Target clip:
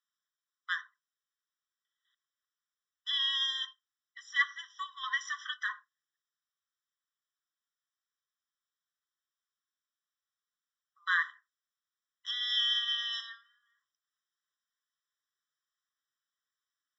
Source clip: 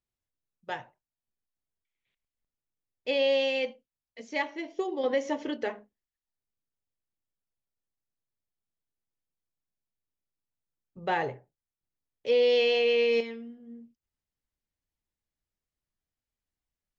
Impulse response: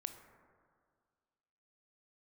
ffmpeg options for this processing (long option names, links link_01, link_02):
-af "aresample=16000,aresample=44100,afftfilt=real='re*eq(mod(floor(b*sr/1024/1000),2),1)':imag='im*eq(mod(floor(b*sr/1024/1000),2),1)':win_size=1024:overlap=0.75,volume=7dB"